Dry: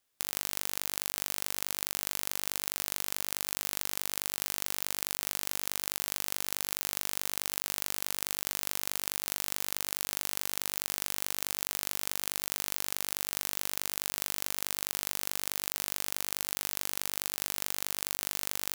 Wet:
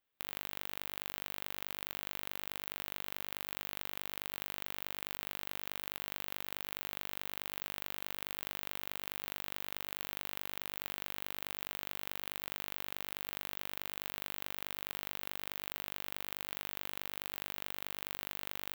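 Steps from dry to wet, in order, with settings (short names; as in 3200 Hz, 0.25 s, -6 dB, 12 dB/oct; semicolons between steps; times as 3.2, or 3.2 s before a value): band shelf 7700 Hz -13.5 dB; gain -4.5 dB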